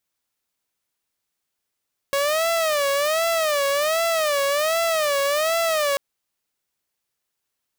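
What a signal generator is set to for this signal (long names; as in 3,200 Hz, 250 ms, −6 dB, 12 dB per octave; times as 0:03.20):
siren wail 556–670 Hz 1.3 per second saw −16.5 dBFS 3.84 s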